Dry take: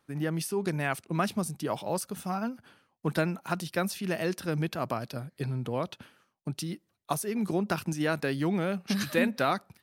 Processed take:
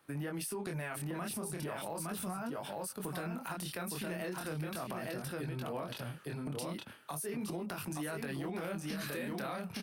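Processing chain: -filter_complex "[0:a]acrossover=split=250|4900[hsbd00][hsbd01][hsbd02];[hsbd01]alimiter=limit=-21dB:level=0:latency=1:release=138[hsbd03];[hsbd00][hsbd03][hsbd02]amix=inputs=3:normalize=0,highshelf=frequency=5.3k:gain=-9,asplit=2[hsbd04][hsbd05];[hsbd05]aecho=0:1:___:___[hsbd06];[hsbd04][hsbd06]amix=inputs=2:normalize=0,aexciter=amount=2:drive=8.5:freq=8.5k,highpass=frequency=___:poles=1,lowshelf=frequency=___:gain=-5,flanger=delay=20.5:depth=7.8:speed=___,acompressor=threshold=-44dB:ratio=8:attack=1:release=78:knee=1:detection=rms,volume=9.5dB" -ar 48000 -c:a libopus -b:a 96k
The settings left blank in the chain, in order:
863, 0.531, 48, 420, 0.37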